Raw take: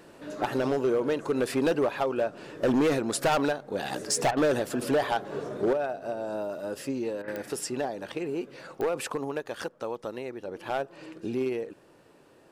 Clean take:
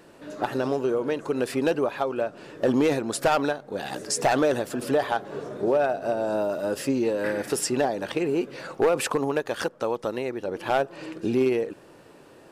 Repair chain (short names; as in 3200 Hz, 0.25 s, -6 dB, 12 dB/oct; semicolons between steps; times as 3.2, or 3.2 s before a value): clip repair -19.5 dBFS; de-click; interpolate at 4.31/7.22, 57 ms; gain correction +7 dB, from 5.73